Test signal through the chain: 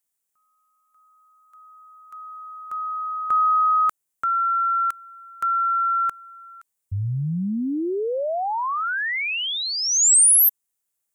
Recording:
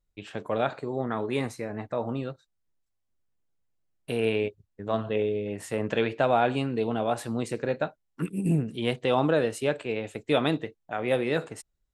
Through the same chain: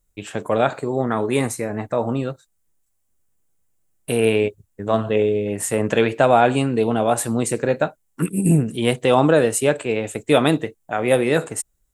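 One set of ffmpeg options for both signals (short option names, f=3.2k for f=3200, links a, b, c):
-af "highshelf=f=6.1k:t=q:w=1.5:g=8.5,volume=8.5dB"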